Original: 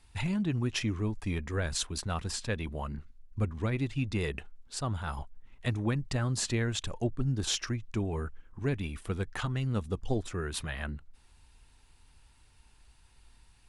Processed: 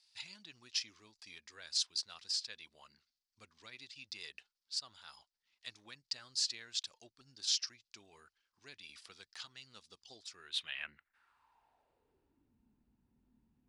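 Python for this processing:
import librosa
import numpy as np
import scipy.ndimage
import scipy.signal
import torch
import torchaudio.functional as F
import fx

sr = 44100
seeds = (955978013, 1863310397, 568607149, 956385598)

y = fx.filter_sweep_bandpass(x, sr, from_hz=4800.0, to_hz=230.0, start_s=10.35, end_s=12.56, q=4.3)
y = fx.band_squash(y, sr, depth_pct=70, at=(8.89, 9.4))
y = y * librosa.db_to_amplitude(6.0)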